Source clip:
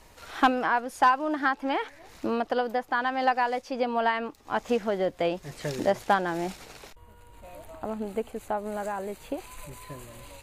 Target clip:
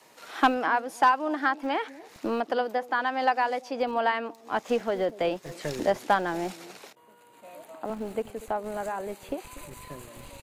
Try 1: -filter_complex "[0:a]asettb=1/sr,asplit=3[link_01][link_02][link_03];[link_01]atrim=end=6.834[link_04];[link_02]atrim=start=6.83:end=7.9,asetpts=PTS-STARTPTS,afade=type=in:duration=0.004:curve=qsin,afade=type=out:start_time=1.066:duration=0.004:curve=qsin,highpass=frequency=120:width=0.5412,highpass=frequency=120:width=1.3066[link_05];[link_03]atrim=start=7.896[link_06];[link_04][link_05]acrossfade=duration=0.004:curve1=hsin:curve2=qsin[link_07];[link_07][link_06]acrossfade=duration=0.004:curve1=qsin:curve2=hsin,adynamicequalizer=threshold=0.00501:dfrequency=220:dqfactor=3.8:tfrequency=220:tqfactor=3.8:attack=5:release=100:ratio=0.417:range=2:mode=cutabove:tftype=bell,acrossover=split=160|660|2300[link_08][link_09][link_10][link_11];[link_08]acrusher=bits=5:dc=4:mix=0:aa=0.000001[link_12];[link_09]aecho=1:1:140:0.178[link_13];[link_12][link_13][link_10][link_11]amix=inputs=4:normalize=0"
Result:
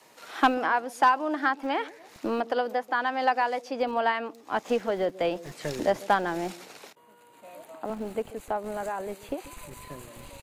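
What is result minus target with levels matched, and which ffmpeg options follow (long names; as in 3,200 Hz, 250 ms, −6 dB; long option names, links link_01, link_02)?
echo 101 ms early
-filter_complex "[0:a]asettb=1/sr,asplit=3[link_01][link_02][link_03];[link_01]atrim=end=6.834[link_04];[link_02]atrim=start=6.83:end=7.9,asetpts=PTS-STARTPTS,afade=type=in:duration=0.004:curve=qsin,afade=type=out:start_time=1.066:duration=0.004:curve=qsin,highpass=frequency=120:width=0.5412,highpass=frequency=120:width=1.3066[link_05];[link_03]atrim=start=7.896[link_06];[link_04][link_05]acrossfade=duration=0.004:curve1=hsin:curve2=qsin[link_07];[link_07][link_06]acrossfade=duration=0.004:curve1=qsin:curve2=hsin,adynamicequalizer=threshold=0.00501:dfrequency=220:dqfactor=3.8:tfrequency=220:tqfactor=3.8:attack=5:release=100:ratio=0.417:range=2:mode=cutabove:tftype=bell,acrossover=split=160|660|2300[link_08][link_09][link_10][link_11];[link_08]acrusher=bits=5:dc=4:mix=0:aa=0.000001[link_12];[link_09]aecho=1:1:241:0.178[link_13];[link_12][link_13][link_10][link_11]amix=inputs=4:normalize=0"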